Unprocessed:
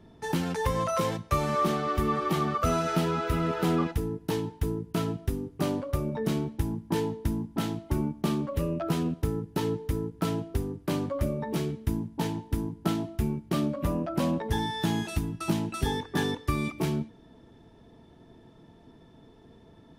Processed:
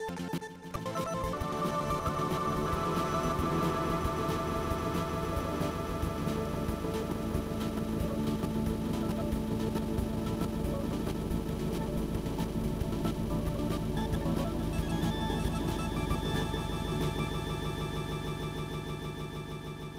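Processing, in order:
slices reordered back to front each 95 ms, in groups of 7
echo that builds up and dies away 155 ms, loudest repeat 8, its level −10 dB
level −7 dB

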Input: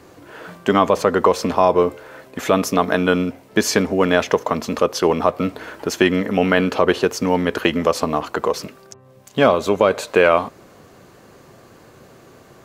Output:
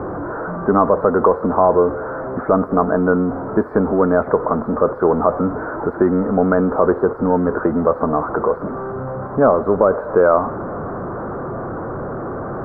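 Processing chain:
converter with a step at zero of −19 dBFS
elliptic low-pass filter 1,400 Hz, stop band 50 dB

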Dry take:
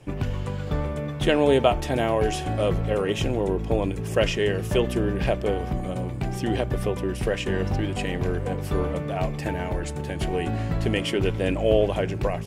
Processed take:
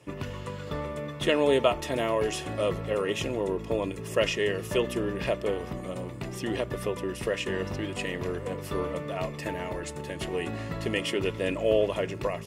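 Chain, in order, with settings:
low-shelf EQ 340 Hz −9 dB
notch comb filter 770 Hz

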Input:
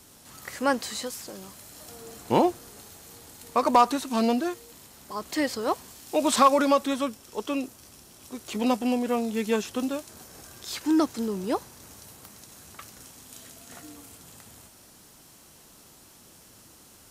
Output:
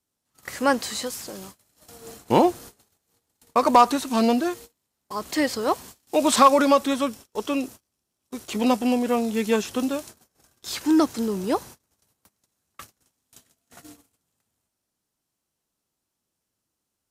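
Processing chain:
noise gate −43 dBFS, range −32 dB
level +3.5 dB

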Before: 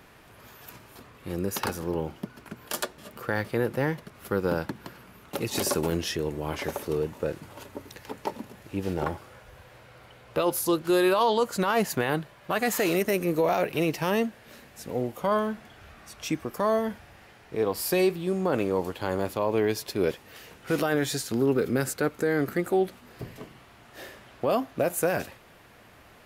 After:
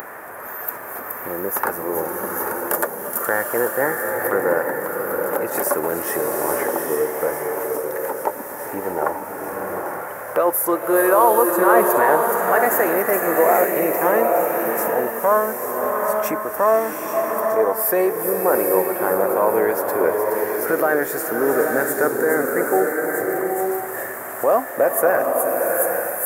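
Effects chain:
drawn EQ curve 130 Hz 0 dB, 560 Hz +12 dB, 1,800 Hz +5 dB, 2,900 Hz −19 dB, 4,100 Hz −25 dB, 14,000 Hz −2 dB
delay with a high-pass on its return 421 ms, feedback 71%, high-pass 4,700 Hz, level −6 dB
in parallel at +2.5 dB: upward compression, threshold −17 dBFS
on the sum: spectral tilt +4 dB per octave
slow-attack reverb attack 850 ms, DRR 1 dB
level −7 dB

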